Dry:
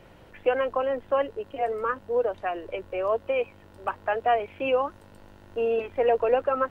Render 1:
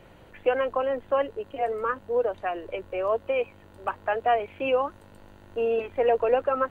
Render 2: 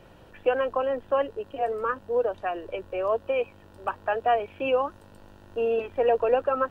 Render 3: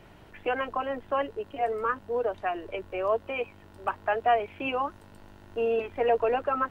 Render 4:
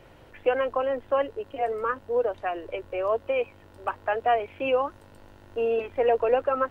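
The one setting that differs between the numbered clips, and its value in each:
notch, frequency: 5300, 2100, 520, 190 Hz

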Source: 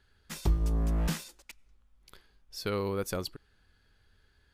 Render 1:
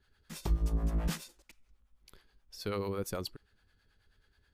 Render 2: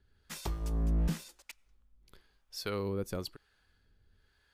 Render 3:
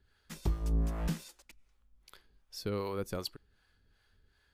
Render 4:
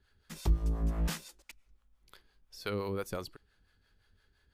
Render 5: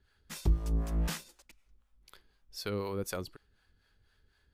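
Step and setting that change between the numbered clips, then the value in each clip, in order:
harmonic tremolo, rate: 9.3, 1, 2.6, 5.8, 4 Hz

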